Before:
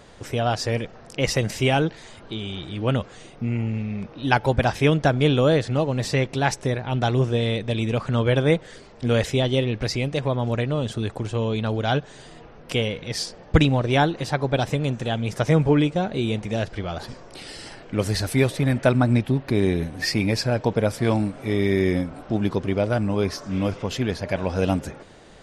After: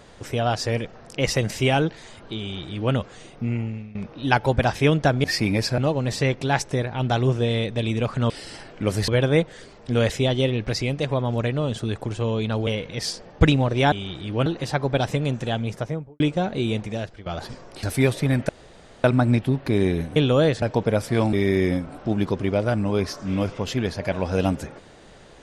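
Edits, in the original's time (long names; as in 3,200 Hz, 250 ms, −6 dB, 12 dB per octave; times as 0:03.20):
0:02.40–0:02.94: duplicate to 0:14.05
0:03.52–0:03.95: fade out, to −17.5 dB
0:05.24–0:05.70: swap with 0:19.98–0:20.52
0:11.81–0:12.80: remove
0:15.10–0:15.79: fade out and dull
0:16.37–0:16.85: fade out, to −16.5 dB
0:17.42–0:18.20: move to 0:08.22
0:18.86: splice in room tone 0.55 s
0:21.23–0:21.57: remove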